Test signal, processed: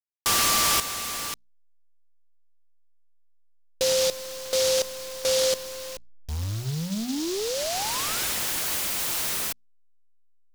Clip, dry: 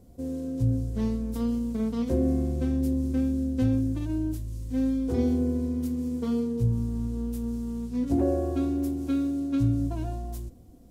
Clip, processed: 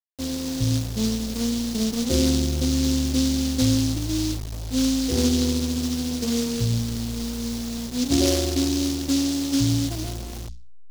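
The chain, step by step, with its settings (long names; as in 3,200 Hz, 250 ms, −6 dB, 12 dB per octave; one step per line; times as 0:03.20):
hold until the input has moved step −35 dBFS
mains-hum notches 60/120/180/240 Hz
short delay modulated by noise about 4,700 Hz, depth 0.19 ms
level +4.5 dB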